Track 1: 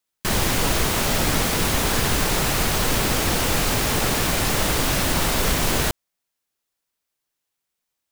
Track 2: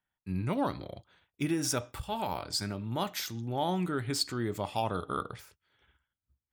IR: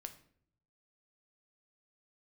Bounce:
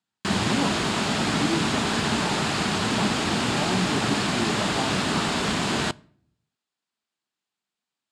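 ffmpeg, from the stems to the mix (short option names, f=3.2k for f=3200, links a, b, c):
-filter_complex "[0:a]volume=-2.5dB,asplit=2[a][b];[b]volume=-8dB[c];[1:a]tiltshelf=f=1.4k:g=7,volume=-3dB[d];[2:a]atrim=start_sample=2205[e];[c][e]afir=irnorm=-1:irlink=0[f];[a][d][f]amix=inputs=3:normalize=0,highpass=140,equalizer=f=210:t=q:w=4:g=6,equalizer=f=520:t=q:w=4:g=-7,equalizer=f=2.1k:t=q:w=4:g=-3,equalizer=f=5.9k:t=q:w=4:g=-8,lowpass=f=7.3k:w=0.5412,lowpass=f=7.3k:w=1.3066"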